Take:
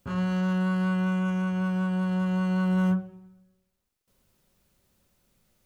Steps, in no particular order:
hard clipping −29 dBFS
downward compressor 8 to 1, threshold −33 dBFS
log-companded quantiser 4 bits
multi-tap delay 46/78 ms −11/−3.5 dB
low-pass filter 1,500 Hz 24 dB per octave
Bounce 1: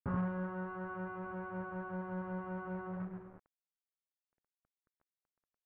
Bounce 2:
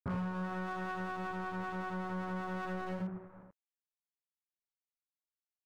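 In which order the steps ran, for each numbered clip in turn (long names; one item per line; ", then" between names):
downward compressor, then hard clipping, then multi-tap delay, then log-companded quantiser, then low-pass filter
log-companded quantiser, then low-pass filter, then hard clipping, then multi-tap delay, then downward compressor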